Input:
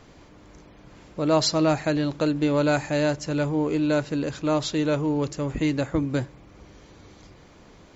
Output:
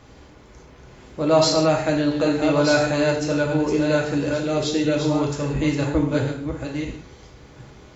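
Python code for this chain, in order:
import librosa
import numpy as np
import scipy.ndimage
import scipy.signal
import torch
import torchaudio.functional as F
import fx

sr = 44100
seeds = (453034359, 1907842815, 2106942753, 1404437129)

y = fx.reverse_delay(x, sr, ms=692, wet_db=-6)
y = fx.peak_eq(y, sr, hz=1000.0, db=-13.5, octaves=0.47, at=(4.38, 4.96))
y = fx.rev_gated(y, sr, seeds[0], gate_ms=200, shape='falling', drr_db=-0.5)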